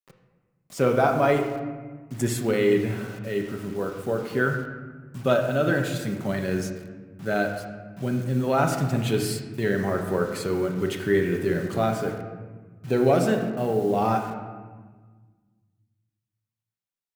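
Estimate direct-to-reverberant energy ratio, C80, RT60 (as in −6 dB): 3.0 dB, 7.5 dB, 1.4 s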